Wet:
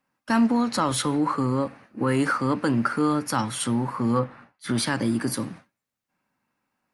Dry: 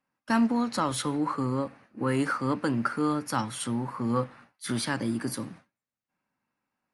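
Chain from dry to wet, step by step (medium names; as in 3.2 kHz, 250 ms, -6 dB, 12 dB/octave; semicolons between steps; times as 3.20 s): 4.19–4.78 s: treble shelf 3.8 kHz -12 dB; in parallel at -0.5 dB: peak limiter -21.5 dBFS, peak gain reduction 9.5 dB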